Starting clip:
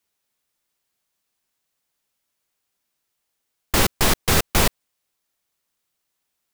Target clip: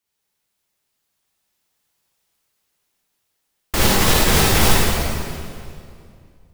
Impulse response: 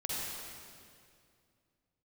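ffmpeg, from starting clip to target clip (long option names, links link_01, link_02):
-filter_complex "[0:a]dynaudnorm=framelen=240:gausssize=13:maxgain=6dB[link_01];[1:a]atrim=start_sample=2205[link_02];[link_01][link_02]afir=irnorm=-1:irlink=0,volume=-1.5dB"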